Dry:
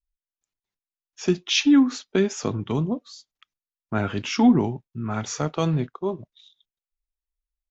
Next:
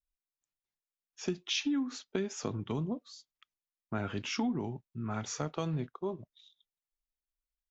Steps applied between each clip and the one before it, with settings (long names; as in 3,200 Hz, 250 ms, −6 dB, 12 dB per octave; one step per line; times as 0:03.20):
downward compressor 5 to 1, threshold −22 dBFS, peak gain reduction 10 dB
level −7.5 dB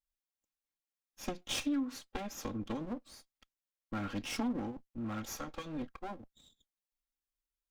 lower of the sound and its delayed copy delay 3.7 ms
level −1.5 dB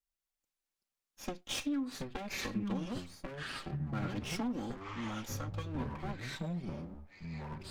delay with pitch and tempo change per echo 198 ms, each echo −6 semitones, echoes 3
level −1.5 dB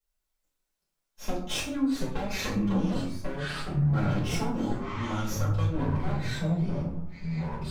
convolution reverb RT60 0.55 s, pre-delay 4 ms, DRR −7.5 dB
level −2.5 dB